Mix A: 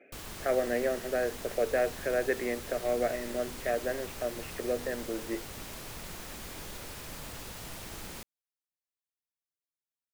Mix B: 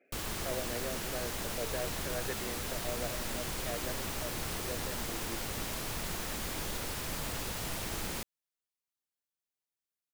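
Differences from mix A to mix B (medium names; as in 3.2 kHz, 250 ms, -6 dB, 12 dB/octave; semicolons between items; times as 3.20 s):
speech -11.0 dB; background +5.5 dB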